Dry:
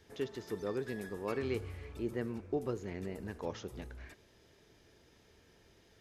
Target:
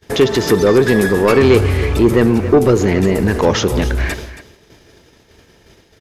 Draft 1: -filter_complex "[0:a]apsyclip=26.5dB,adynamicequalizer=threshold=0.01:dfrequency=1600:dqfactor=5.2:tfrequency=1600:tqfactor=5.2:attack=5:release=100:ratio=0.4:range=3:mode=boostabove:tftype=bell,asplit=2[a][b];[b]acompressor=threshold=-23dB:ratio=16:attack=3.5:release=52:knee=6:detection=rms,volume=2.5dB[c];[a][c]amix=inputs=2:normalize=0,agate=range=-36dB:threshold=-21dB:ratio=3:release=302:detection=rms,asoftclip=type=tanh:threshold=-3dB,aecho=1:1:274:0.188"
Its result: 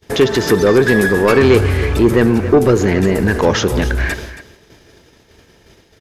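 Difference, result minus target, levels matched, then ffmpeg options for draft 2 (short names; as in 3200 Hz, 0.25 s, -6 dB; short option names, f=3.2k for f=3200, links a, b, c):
2000 Hz band +3.0 dB
-filter_complex "[0:a]apsyclip=26.5dB,asplit=2[a][b];[b]acompressor=threshold=-23dB:ratio=16:attack=3.5:release=52:knee=6:detection=rms,volume=2.5dB[c];[a][c]amix=inputs=2:normalize=0,agate=range=-36dB:threshold=-21dB:ratio=3:release=302:detection=rms,asoftclip=type=tanh:threshold=-3dB,aecho=1:1:274:0.188"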